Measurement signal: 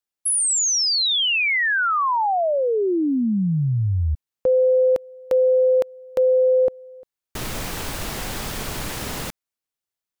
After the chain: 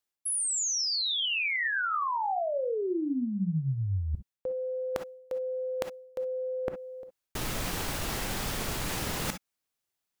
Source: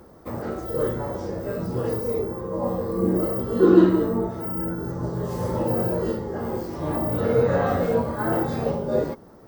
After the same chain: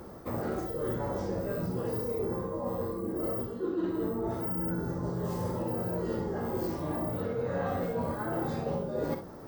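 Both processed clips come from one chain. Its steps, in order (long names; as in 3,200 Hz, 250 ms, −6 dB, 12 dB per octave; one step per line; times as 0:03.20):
reversed playback
downward compressor 10 to 1, threshold −32 dBFS
reversed playback
reverb whose tail is shaped and stops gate 80 ms rising, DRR 7 dB
level +2.5 dB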